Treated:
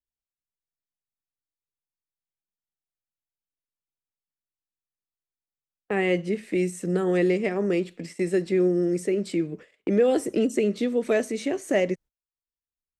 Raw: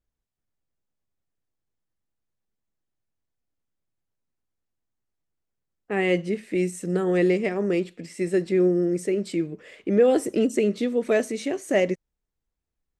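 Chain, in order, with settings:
noise gate −42 dBFS, range −28 dB
multiband upward and downward compressor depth 40%
level −1 dB

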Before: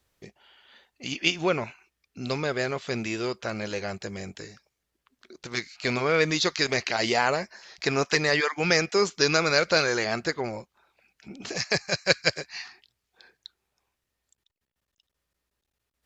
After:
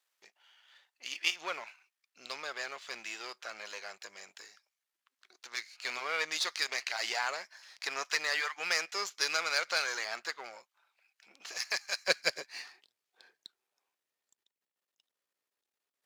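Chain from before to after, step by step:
gain on one half-wave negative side −7 dB
high-pass filter 960 Hz 12 dB per octave, from 0:12.08 370 Hz
level −3.5 dB

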